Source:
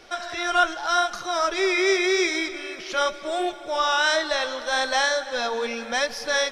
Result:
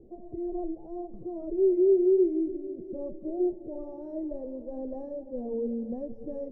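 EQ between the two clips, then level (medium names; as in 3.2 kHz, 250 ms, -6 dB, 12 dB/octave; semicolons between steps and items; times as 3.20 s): inverse Chebyshev low-pass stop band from 1.3 kHz, stop band 60 dB; +4.5 dB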